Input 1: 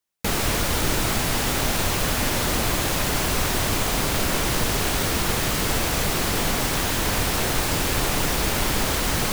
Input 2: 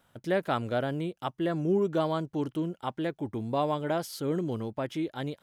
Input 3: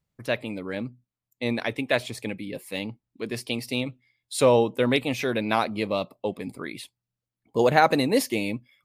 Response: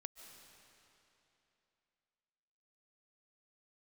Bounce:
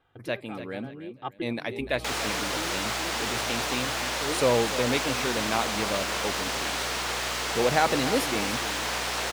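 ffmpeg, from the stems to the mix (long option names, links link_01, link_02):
-filter_complex "[0:a]acrossover=split=7900[link_01][link_02];[link_02]acompressor=threshold=-43dB:ratio=4:attack=1:release=60[link_03];[link_01][link_03]amix=inputs=2:normalize=0,highpass=540,aeval=exprs='val(0)+0.0112*(sin(2*PI*60*n/s)+sin(2*PI*2*60*n/s)/2+sin(2*PI*3*60*n/s)/3+sin(2*PI*4*60*n/s)/4+sin(2*PI*5*60*n/s)/5)':channel_layout=same,adelay=1800,volume=-3dB[link_04];[1:a]lowpass=frequency=3500:width=0.5412,lowpass=frequency=3500:width=1.3066,aecho=1:1:2.5:0.81,volume=-3dB[link_05];[2:a]volume=-4.5dB,asplit=3[link_06][link_07][link_08];[link_07]volume=-12.5dB[link_09];[link_08]apad=whole_len=239285[link_10];[link_05][link_10]sidechaincompress=threshold=-41dB:ratio=8:attack=9.4:release=553[link_11];[link_09]aecho=0:1:295|590|885|1180|1475:1|0.32|0.102|0.0328|0.0105[link_12];[link_04][link_11][link_06][link_12]amix=inputs=4:normalize=0"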